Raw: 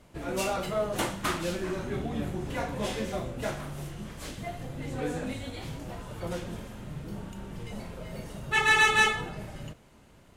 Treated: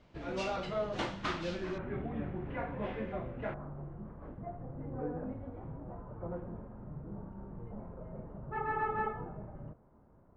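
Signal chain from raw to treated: low-pass 5.2 kHz 24 dB/octave, from 1.78 s 2.3 kHz, from 3.54 s 1.2 kHz; trim -5.5 dB

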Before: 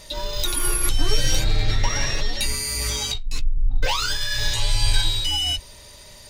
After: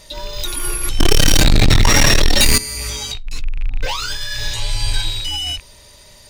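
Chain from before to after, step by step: rattle on loud lows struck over -29 dBFS, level -24 dBFS; 0.99–2.58 s: waveshaping leveller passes 5; dynamic bell 270 Hz, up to +6 dB, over -33 dBFS, Q 1.2

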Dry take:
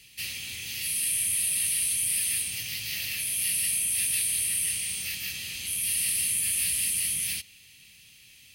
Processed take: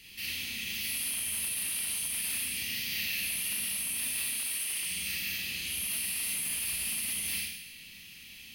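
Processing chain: in parallel at +3 dB: compression 4:1, threshold -46 dBFS, peak gain reduction 18 dB; 4.33–4.86 s: on the sum: bass shelf 360 Hz -11 dB; Schroeder reverb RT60 0.92 s, combs from 32 ms, DRR -3 dB; peak limiter -12.5 dBFS, peak gain reduction 4 dB; wavefolder -16.5 dBFS; graphic EQ 125/250/500/8000 Hz -7/+6/-3/-8 dB; on a send: flutter echo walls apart 10.2 m, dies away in 0.26 s; on the sum: trim -6 dB

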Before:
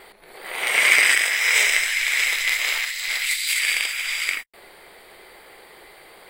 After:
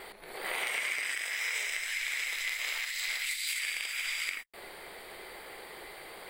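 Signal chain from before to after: compression 10:1, threshold -31 dBFS, peak gain reduction 20 dB

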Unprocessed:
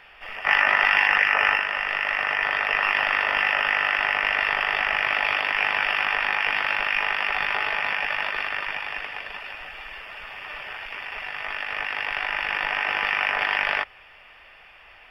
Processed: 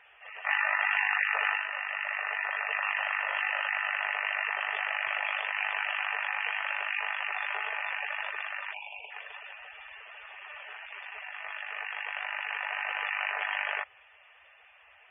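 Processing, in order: spectral gate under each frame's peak -15 dB strong; high-pass 97 Hz 12 dB/octave; spectral selection erased 8.74–9.11 s, 1–2.2 kHz; trim -8 dB

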